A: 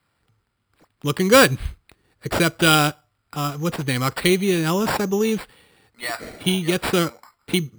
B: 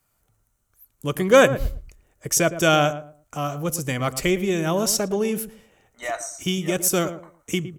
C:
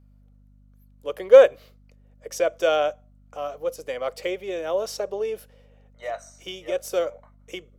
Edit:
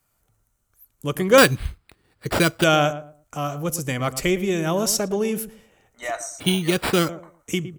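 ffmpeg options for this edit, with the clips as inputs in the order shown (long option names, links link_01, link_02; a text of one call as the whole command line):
ffmpeg -i take0.wav -i take1.wav -filter_complex "[0:a]asplit=2[link_01][link_02];[1:a]asplit=3[link_03][link_04][link_05];[link_03]atrim=end=1.382[link_06];[link_01]atrim=start=1.378:end=2.642[link_07];[link_04]atrim=start=2.638:end=6.402[link_08];[link_02]atrim=start=6.398:end=7.092[link_09];[link_05]atrim=start=7.088[link_10];[link_06][link_07]acrossfade=duration=0.004:curve1=hsin:curve2=hsin[link_11];[link_11][link_08]acrossfade=duration=0.004:curve1=hsin:curve2=hsin[link_12];[link_12][link_09]acrossfade=duration=0.004:curve1=hsin:curve2=hsin[link_13];[link_13][link_10]acrossfade=duration=0.004:curve1=hsin:curve2=hsin" out.wav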